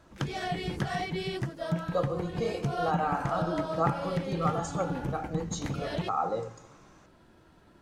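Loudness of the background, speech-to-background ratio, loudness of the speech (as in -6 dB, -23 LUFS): -34.0 LUFS, 1.0 dB, -33.0 LUFS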